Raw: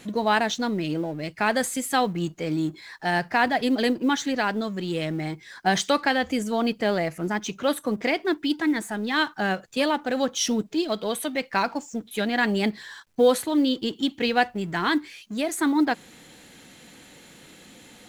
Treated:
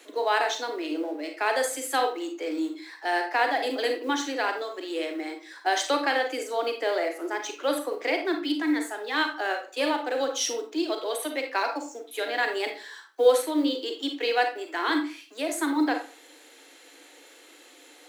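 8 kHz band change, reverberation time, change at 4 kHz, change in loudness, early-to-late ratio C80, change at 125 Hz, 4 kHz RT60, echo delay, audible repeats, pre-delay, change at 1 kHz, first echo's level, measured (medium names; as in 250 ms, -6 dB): -2.0 dB, 0.40 s, -2.0 dB, -2.5 dB, 13.0 dB, under -35 dB, 0.30 s, no echo, no echo, 34 ms, -1.5 dB, no echo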